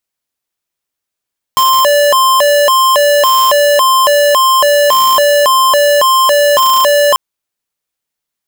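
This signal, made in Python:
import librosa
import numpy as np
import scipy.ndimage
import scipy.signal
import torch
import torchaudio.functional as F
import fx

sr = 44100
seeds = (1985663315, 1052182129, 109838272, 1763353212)

y = fx.siren(sr, length_s=5.59, kind='hi-lo', low_hz=581.0, high_hz=1050.0, per_s=1.8, wave='square', level_db=-8.5)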